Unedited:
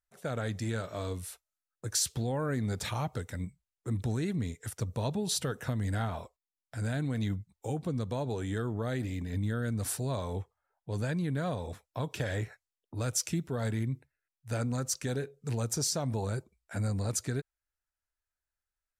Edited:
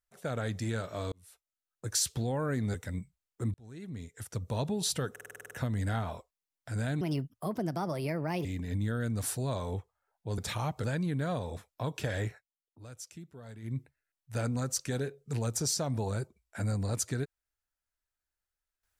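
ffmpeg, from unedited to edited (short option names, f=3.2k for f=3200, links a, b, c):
-filter_complex "[0:a]asplit=18[a][b][c][d][e][f][g][h][i][j][k][l][m][n][o][p][q][r];[a]atrim=end=1.12,asetpts=PTS-STARTPTS,afade=t=out:st=1.116:d=0.004:c=hsin[s];[b]atrim=start=1.12:end=2.742,asetpts=PTS-STARTPTS,afade=t=in:d=0.75[t];[c]atrim=start=3.198:end=4,asetpts=PTS-STARTPTS,afade=t=out:st=0.798:d=0.004:c=hsin[u];[d]atrim=start=4:end=5.622,asetpts=PTS-STARTPTS,afade=t=in:d=1.06[v];[e]atrim=start=5.568:end=5.622[w];[f]atrim=start=5.568:end=5.622[x];[g]atrim=start=5.568:end=5.622[y];[h]atrim=start=5.568:end=5.622[z];[i]atrim=start=5.568:end=5.622[aa];[j]atrim=start=5.568:end=5.622[ab];[k]atrim=start=5.568:end=5.622[ac];[l]atrim=start=5.568:end=7.074[ad];[m]atrim=start=7.07:end=9.07,asetpts=PTS-STARTPTS,asetrate=61299,aresample=44100,atrim=end_sample=63453,asetpts=PTS-STARTPTS[ae];[n]atrim=start=9.066:end=11.002[af];[o]atrim=start=2.738:end=3.202[ag];[p]atrim=start=10.998:end=12.6,asetpts=PTS-STARTPTS,afade=t=out:st=1.452:d=0.15:silence=0.177828[ah];[q]atrim=start=12.6:end=13.78,asetpts=PTS-STARTPTS,volume=-15dB[ai];[r]atrim=start=13.78,asetpts=PTS-STARTPTS,afade=t=in:d=0.15:silence=0.177828[aj];[s][t]concat=n=2:v=0:a=1[ak];[u][v]concat=n=2:v=0:a=1[al];[ak][al]acrossfade=d=0.004:c1=hsin:c2=hsin[am];[am][w]acrossfade=d=0.004:c1=hsin:c2=hsin[an];[an][x]acrossfade=d=0.004:c1=hsin:c2=hsin[ao];[ao][y]acrossfade=d=0.004:c1=hsin:c2=hsin[ap];[ap][z]acrossfade=d=0.004:c1=hsin:c2=hsin[aq];[aq][aa]acrossfade=d=0.004:c1=hsin:c2=hsin[ar];[ar][ab]acrossfade=d=0.004:c1=hsin:c2=hsin[as];[as][ac]acrossfade=d=0.004:c1=hsin:c2=hsin[at];[at][ad]acrossfade=d=0.004:c1=hsin:c2=hsin[au];[au][ae]acrossfade=d=0.004:c1=hsin:c2=hsin[av];[av][af]acrossfade=d=0.004:c1=hsin:c2=hsin[aw];[aw][ag]acrossfade=d=0.004:c1=hsin:c2=hsin[ax];[ah][ai][aj]concat=n=3:v=0:a=1[ay];[ax][ay]acrossfade=d=0.004:c1=hsin:c2=hsin"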